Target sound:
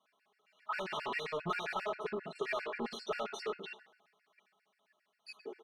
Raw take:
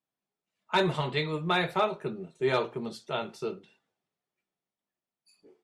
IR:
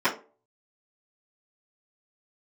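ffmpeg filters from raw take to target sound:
-filter_complex "[0:a]asplit=2[s0][s1];[s1]highpass=f=720:p=1,volume=56.2,asoftclip=type=tanh:threshold=0.211[s2];[s0][s2]amix=inputs=2:normalize=0,lowpass=f=4600:p=1,volume=0.501,lowshelf=f=450:g=-11,bandreject=f=7300:w=7.4,aecho=1:1:4.7:0.87,acompressor=threshold=0.0501:ratio=5,aemphasis=mode=reproduction:type=75kf,asplit=2[s3][s4];[1:a]atrim=start_sample=2205[s5];[s4][s5]afir=irnorm=-1:irlink=0,volume=0.0891[s6];[s3][s6]amix=inputs=2:normalize=0,afftfilt=real='re*gt(sin(2*PI*7.5*pts/sr)*(1-2*mod(floor(b*sr/1024/1400),2)),0)':imag='im*gt(sin(2*PI*7.5*pts/sr)*(1-2*mod(floor(b*sr/1024/1400),2)),0)':win_size=1024:overlap=0.75,volume=0.473"

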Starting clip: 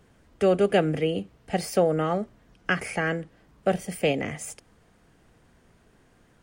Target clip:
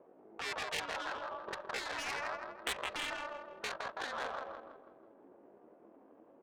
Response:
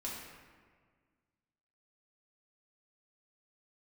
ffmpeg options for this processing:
-filter_complex "[0:a]aemphasis=mode=reproduction:type=bsi,aeval=exprs='val(0)*sin(2*PI*150*n/s)':c=same,acrossover=split=730[s0][s1];[s0]acompressor=threshold=0.02:ratio=16[s2];[s2][s1]amix=inputs=2:normalize=0,asetrate=80880,aresample=44100,atempo=0.545254,asuperpass=centerf=1200:order=4:qfactor=0.59,asplit=2[s3][s4];[s4]aecho=0:1:164|328|492|656|820|984:0.447|0.232|0.121|0.0628|0.0327|0.017[s5];[s3][s5]amix=inputs=2:normalize=0,adynamicsmooth=sensitivity=5.5:basefreq=780,afftfilt=real='re*lt(hypot(re,im),0.0501)':imag='im*lt(hypot(re,im),0.0501)':win_size=1024:overlap=0.75,volume=1.5"

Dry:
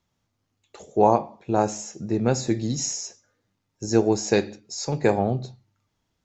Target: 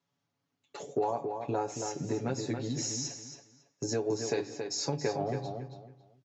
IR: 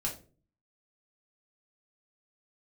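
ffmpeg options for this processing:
-filter_complex "[0:a]agate=range=0.398:threshold=0.00355:ratio=16:detection=peak,aecho=1:1:7.1:1,acompressor=threshold=0.0355:ratio=6,highpass=140,lowpass=6400,asplit=2[s0][s1];[s1]adelay=276,lowpass=f=4000:p=1,volume=0.501,asplit=2[s2][s3];[s3]adelay=276,lowpass=f=4000:p=1,volume=0.25,asplit=2[s4][s5];[s5]adelay=276,lowpass=f=4000:p=1,volume=0.25[s6];[s2][s4][s6]amix=inputs=3:normalize=0[s7];[s0][s7]amix=inputs=2:normalize=0"

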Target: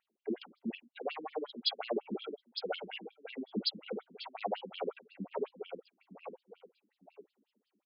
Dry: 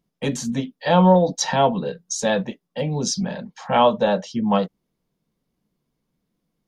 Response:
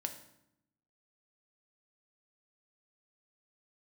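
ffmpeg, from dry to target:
-filter_complex "[0:a]highshelf=f=5800:g=-8,asplit=2[s0][s1];[s1]adelay=751,lowpass=f=4000:p=1,volume=0.0708,asplit=2[s2][s3];[s3]adelay=751,lowpass=f=4000:p=1,volume=0.26[s4];[s0][s2][s4]amix=inputs=3:normalize=0,acrossover=split=410|5000[s5][s6][s7];[s7]dynaudnorm=f=570:g=3:m=2.51[s8];[s5][s6][s8]amix=inputs=3:normalize=0,bandreject=f=2100:w=19,asetrate=37485,aresample=44100,aphaser=in_gain=1:out_gain=1:delay=1.4:decay=0.33:speed=0.55:type=triangular,asoftclip=type=tanh:threshold=0.2,areverse,acompressor=threshold=0.0251:ratio=16,areverse,equalizer=f=1600:t=o:w=0.47:g=-4.5,bandreject=f=60:t=h:w=6,bandreject=f=120:t=h:w=6,bandreject=f=180:t=h:w=6,bandreject=f=240:t=h:w=6,afftfilt=real='re*between(b*sr/1024,250*pow(3800/250,0.5+0.5*sin(2*PI*5.5*pts/sr))/1.41,250*pow(3800/250,0.5+0.5*sin(2*PI*5.5*pts/sr))*1.41)':imag='im*between(b*sr/1024,250*pow(3800/250,0.5+0.5*sin(2*PI*5.5*pts/sr))/1.41,250*pow(3800/250,0.5+0.5*sin(2*PI*5.5*pts/sr))*1.41)':win_size=1024:overlap=0.75,volume=2.24"

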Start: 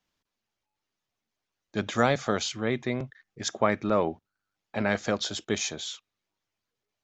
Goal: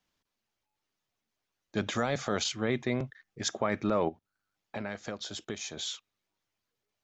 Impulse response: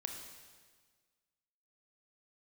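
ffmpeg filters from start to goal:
-filter_complex "[0:a]asettb=1/sr,asplit=3[s0][s1][s2];[s0]atrim=end=2.444[s3];[s1]atrim=start=2.44:end=2.97,asetpts=PTS-STARTPTS,afade=t=in:d=0.004:c=qsin,afade=t=out:st=0.526:d=0.004:c=qsin,agate=range=0.0224:threshold=0.02:ratio=3:detection=peak[s4];[s2]atrim=start=2.966[s5];[s3][s4]acrossfade=d=0.004:c1=hsin:c2=qsin[s6];[s6][s5]acrossfade=d=0.004:c1=qsin:c2=hsin,asplit=3[s7][s8][s9];[s7]afade=t=out:st=4.08:d=0.02[s10];[s8]acompressor=threshold=0.0158:ratio=4,afade=t=in:st=4.08:d=0.02,afade=t=out:st=5.76:d=0.02[s11];[s9]afade=t=in:st=5.76:d=0.02[s12];[s10][s11][s12]amix=inputs=3:normalize=0,alimiter=limit=0.126:level=0:latency=1:release=20"

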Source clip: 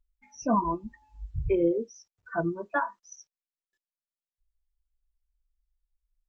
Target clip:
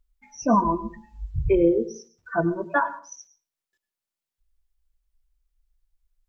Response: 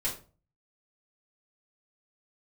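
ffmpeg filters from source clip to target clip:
-filter_complex "[0:a]asplit=2[s0][s1];[1:a]atrim=start_sample=2205,adelay=95[s2];[s1][s2]afir=irnorm=-1:irlink=0,volume=0.106[s3];[s0][s3]amix=inputs=2:normalize=0,volume=1.88"

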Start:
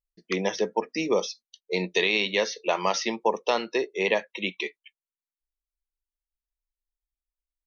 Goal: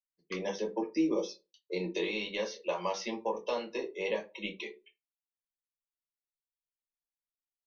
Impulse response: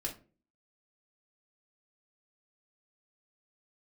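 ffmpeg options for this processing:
-filter_complex "[0:a]agate=range=0.0631:threshold=0.00316:ratio=16:detection=peak,asettb=1/sr,asplit=3[s0][s1][s2];[s0]atrim=end=0.714[s3];[s1]atrim=start=0.71:end=2.11,asetpts=PTS-STARTPTS,afade=t=in:d=0.004:c=qsin,afade=t=out:st=1.396:d=0.004:c=qsin,equalizer=f=330:t=o:w=0.37:g=12.5[s4];[s2]atrim=start=2.106[s5];[s3][s4]acrossfade=d=0.004:c1=hsin:c2=qsin[s6];[s6][s5]acrossfade=d=0.004:c1=qsin:c2=hsin,acrossover=split=190[s7][s8];[s8]acompressor=threshold=0.0794:ratio=4[s9];[s7][s9]amix=inputs=2:normalize=0[s10];[1:a]atrim=start_sample=2205,asetrate=74970,aresample=44100[s11];[s10][s11]afir=irnorm=-1:irlink=0,volume=0.562"

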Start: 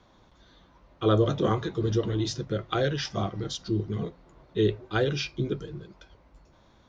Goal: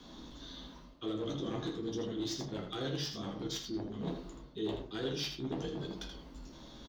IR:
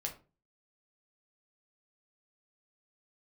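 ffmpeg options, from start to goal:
-filter_complex "[0:a]acrossover=split=310[s0][s1];[s0]aecho=1:1:4.1:0.48[s2];[s1]aexciter=amount=7.1:drive=2.9:freq=3200[s3];[s2][s3]amix=inputs=2:normalize=0,lowshelf=f=400:t=q:w=1.5:g=10,alimiter=limit=0.266:level=0:latency=1:release=13,areverse,acompressor=threshold=0.0224:ratio=16,areverse,aeval=exprs='0.0335*(abs(mod(val(0)/0.0335+3,4)-2)-1)':c=same,bass=f=250:g=-12,treble=f=4000:g=-11,aecho=1:1:80:0.398[s4];[1:a]atrim=start_sample=2205[s5];[s4][s5]afir=irnorm=-1:irlink=0,volume=1.68"

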